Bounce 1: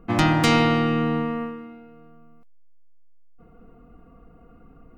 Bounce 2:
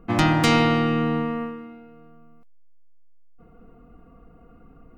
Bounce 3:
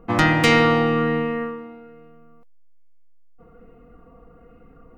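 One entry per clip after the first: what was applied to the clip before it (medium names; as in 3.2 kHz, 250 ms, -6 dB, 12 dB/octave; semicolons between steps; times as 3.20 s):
no audible change
small resonant body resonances 490/1900 Hz, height 8 dB; sweeping bell 1.2 Hz 840–2500 Hz +6 dB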